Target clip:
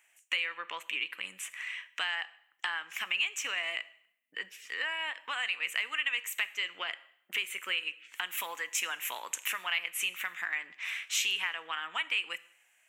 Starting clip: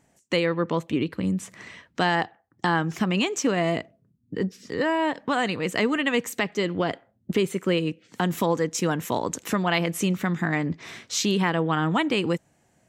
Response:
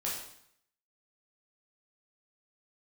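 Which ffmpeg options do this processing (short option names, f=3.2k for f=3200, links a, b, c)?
-filter_complex "[0:a]highpass=1.2k,highshelf=f=3.5k:t=q:w=3:g=-10,acompressor=threshold=-33dB:ratio=3,crystalizer=i=8:c=0,asplit=2[a][b];[1:a]atrim=start_sample=2205[c];[b][c]afir=irnorm=-1:irlink=0,volume=-17dB[d];[a][d]amix=inputs=2:normalize=0,volume=-8dB"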